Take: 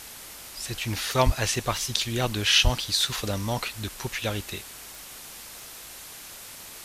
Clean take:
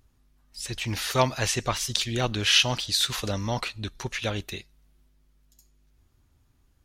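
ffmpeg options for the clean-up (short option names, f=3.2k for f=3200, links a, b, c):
-filter_complex "[0:a]adeclick=t=4,asplit=3[a][b][c];[a]afade=t=out:st=1.25:d=0.02[d];[b]highpass=f=140:w=0.5412,highpass=f=140:w=1.3066,afade=t=in:st=1.25:d=0.02,afade=t=out:st=1.37:d=0.02[e];[c]afade=t=in:st=1.37:d=0.02[f];[d][e][f]amix=inputs=3:normalize=0,asplit=3[g][h][i];[g]afade=t=out:st=2.63:d=0.02[j];[h]highpass=f=140:w=0.5412,highpass=f=140:w=1.3066,afade=t=in:st=2.63:d=0.02,afade=t=out:st=2.75:d=0.02[k];[i]afade=t=in:st=2.75:d=0.02[l];[j][k][l]amix=inputs=3:normalize=0,afwtdn=0.0089"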